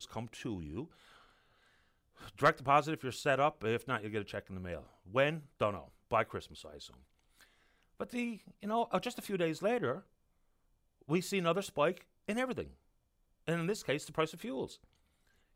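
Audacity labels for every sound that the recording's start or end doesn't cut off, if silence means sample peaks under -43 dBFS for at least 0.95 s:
2.210000	9.990000	sound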